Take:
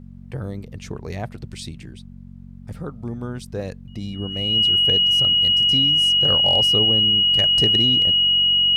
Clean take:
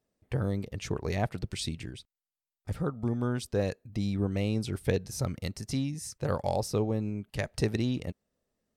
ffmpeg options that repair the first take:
ffmpeg -i in.wav -af "bandreject=frequency=46.2:width_type=h:width=4,bandreject=frequency=92.4:width_type=h:width=4,bandreject=frequency=138.6:width_type=h:width=4,bandreject=frequency=184.8:width_type=h:width=4,bandreject=frequency=231:width_type=h:width=4,bandreject=frequency=2900:width=30,agate=range=-21dB:threshold=-32dB,asetnsamples=nb_out_samples=441:pad=0,asendcmd='5.72 volume volume -4dB',volume=0dB" out.wav

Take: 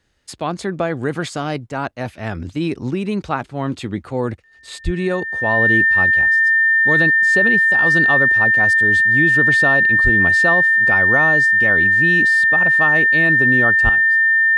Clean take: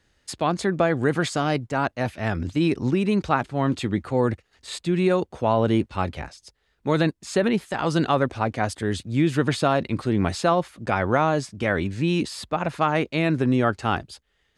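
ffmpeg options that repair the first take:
ffmpeg -i in.wav -filter_complex "[0:a]bandreject=frequency=1800:width=30,asplit=3[link_01][link_02][link_03];[link_01]afade=type=out:start_time=4.84:duration=0.02[link_04];[link_02]highpass=frequency=140:width=0.5412,highpass=frequency=140:width=1.3066,afade=type=in:start_time=4.84:duration=0.02,afade=type=out:start_time=4.96:duration=0.02[link_05];[link_03]afade=type=in:start_time=4.96:duration=0.02[link_06];[link_04][link_05][link_06]amix=inputs=3:normalize=0,asplit=3[link_07][link_08][link_09];[link_07]afade=type=out:start_time=10.03:duration=0.02[link_10];[link_08]highpass=frequency=140:width=0.5412,highpass=frequency=140:width=1.3066,afade=type=in:start_time=10.03:duration=0.02,afade=type=out:start_time=10.15:duration=0.02[link_11];[link_09]afade=type=in:start_time=10.15:duration=0.02[link_12];[link_10][link_11][link_12]amix=inputs=3:normalize=0,asplit=3[link_13][link_14][link_15];[link_13]afade=type=out:start_time=13.83:duration=0.02[link_16];[link_14]highpass=frequency=140:width=0.5412,highpass=frequency=140:width=1.3066,afade=type=in:start_time=13.83:duration=0.02,afade=type=out:start_time=13.95:duration=0.02[link_17];[link_15]afade=type=in:start_time=13.95:duration=0.02[link_18];[link_16][link_17][link_18]amix=inputs=3:normalize=0,asetnsamples=nb_out_samples=441:pad=0,asendcmd='13.89 volume volume 10.5dB',volume=0dB" out.wav

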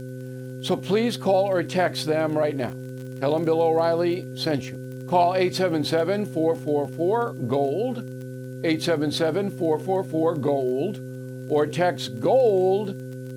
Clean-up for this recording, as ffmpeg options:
ffmpeg -i in.wav -af "adeclick=threshold=4,bandreject=frequency=128.5:width_type=h:width=4,bandreject=frequency=257:width_type=h:width=4,bandreject=frequency=385.5:width_type=h:width=4,bandreject=frequency=514:width_type=h:width=4,bandreject=frequency=1500:width=30,agate=range=-21dB:threshold=-27dB" out.wav

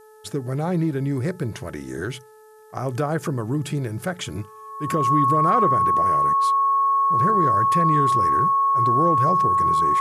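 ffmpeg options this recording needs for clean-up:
ffmpeg -i in.wav -af "bandreject=frequency=432.1:width_type=h:width=4,bandreject=frequency=864.2:width_type=h:width=4,bandreject=frequency=1296.3:width_type=h:width=4,bandreject=frequency=1728.4:width_type=h:width=4,bandreject=frequency=1100:width=30,agate=range=-21dB:threshold=-33dB" out.wav

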